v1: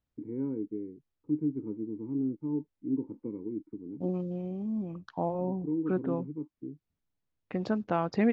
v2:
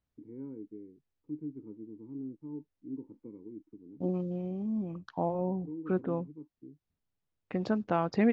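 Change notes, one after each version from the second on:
first voice −9.5 dB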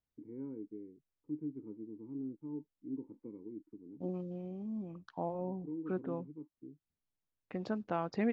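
second voice −6.0 dB
master: add parametric band 76 Hz −3.5 dB 2.3 octaves

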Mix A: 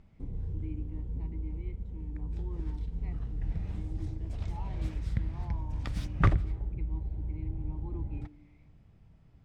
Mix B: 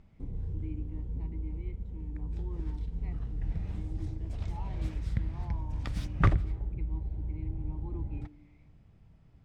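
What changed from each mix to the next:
nothing changed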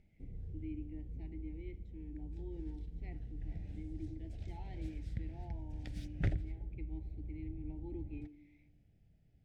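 background −9.5 dB
master: add Butterworth band-reject 1,100 Hz, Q 1.3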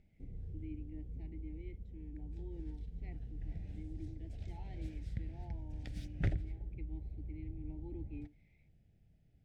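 speech: send off

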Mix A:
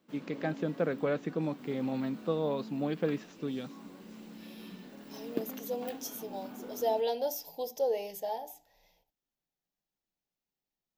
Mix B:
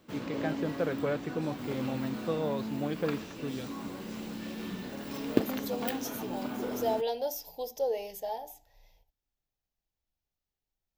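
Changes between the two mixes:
background +11.0 dB
master: add low shelf with overshoot 120 Hz +12.5 dB, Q 1.5

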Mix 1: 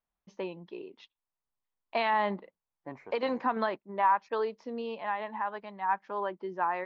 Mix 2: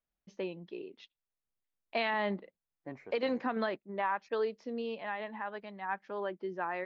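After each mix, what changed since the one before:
master: add parametric band 970 Hz −10 dB 0.7 octaves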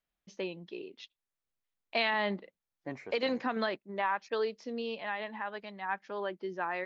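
second voice +3.5 dB
master: add high-shelf EQ 3,100 Hz +11 dB

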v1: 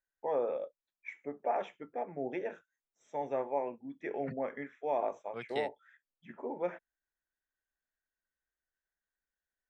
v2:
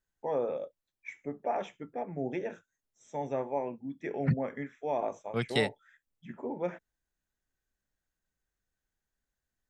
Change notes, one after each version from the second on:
second voice +8.5 dB
master: add bass and treble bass +12 dB, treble +11 dB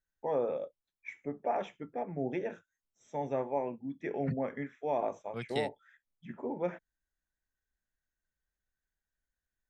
first voice: add high-frequency loss of the air 67 metres
second voice −8.5 dB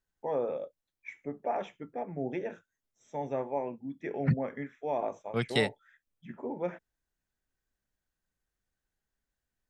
second voice +9.5 dB

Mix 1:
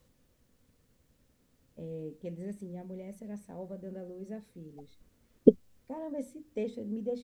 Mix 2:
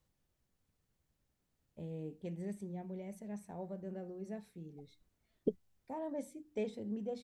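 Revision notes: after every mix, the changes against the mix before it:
second voice −11.5 dB
master: add thirty-one-band graphic EQ 250 Hz −8 dB, 500 Hz −7 dB, 800 Hz +4 dB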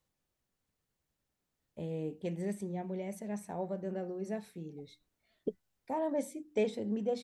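first voice +9.0 dB
master: add low-shelf EQ 210 Hz −8 dB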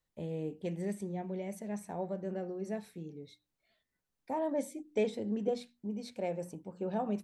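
first voice: entry −1.60 s
second voice −5.0 dB

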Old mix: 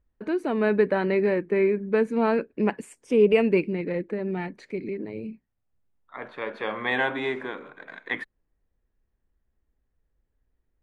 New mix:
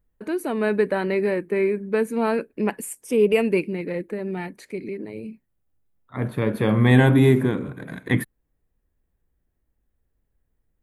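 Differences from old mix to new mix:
second voice: remove band-pass filter 700–6,800 Hz
master: remove high-frequency loss of the air 120 metres

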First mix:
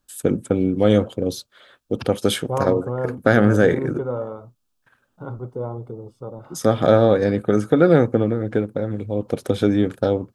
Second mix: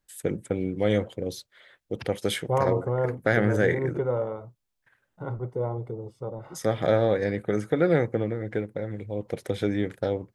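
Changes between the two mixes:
first voice −7.0 dB
master: add thirty-one-band graphic EQ 250 Hz −8 dB, 1,250 Hz −5 dB, 2,000 Hz +12 dB

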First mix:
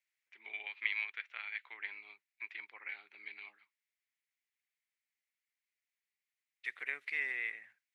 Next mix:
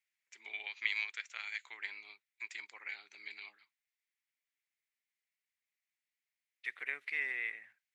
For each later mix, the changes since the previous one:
first voice: remove low-pass filter 3,100 Hz 24 dB per octave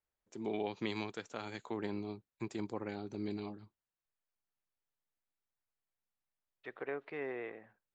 second voice: add band-pass filter 710–2,700 Hz
master: remove high-pass with resonance 2,100 Hz, resonance Q 4.7

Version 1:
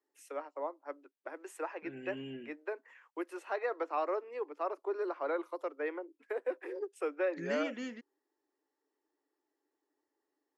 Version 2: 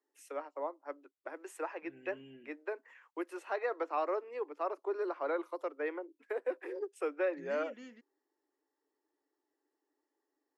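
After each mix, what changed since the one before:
second voice −10.0 dB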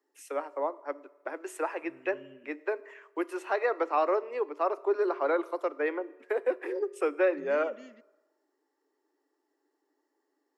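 first voice +6.0 dB
reverb: on, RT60 1.1 s

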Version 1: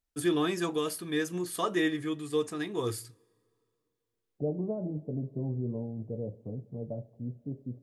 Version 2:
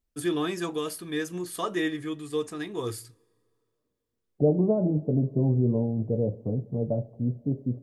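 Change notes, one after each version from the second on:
second voice +10.0 dB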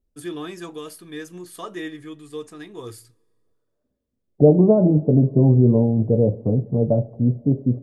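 first voice −4.0 dB
second voice +9.0 dB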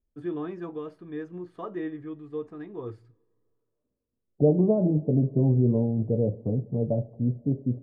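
second voice −7.0 dB
master: add Bessel low-pass filter 970 Hz, order 2

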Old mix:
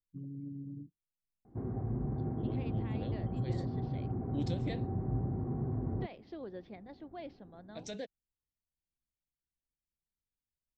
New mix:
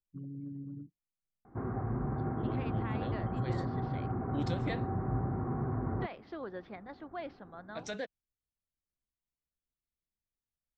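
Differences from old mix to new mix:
background: remove high-frequency loss of the air 420 metres
master: add parametric band 1,300 Hz +14 dB 1.3 octaves

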